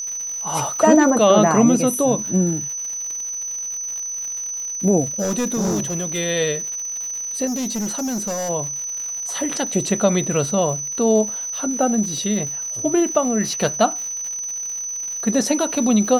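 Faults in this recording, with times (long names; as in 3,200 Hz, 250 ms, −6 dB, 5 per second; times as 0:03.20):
surface crackle 160 per second −29 dBFS
whistle 6,000 Hz −25 dBFS
0:05.19–0:06.19: clipping −17.5 dBFS
0:07.46–0:08.50: clipping −21 dBFS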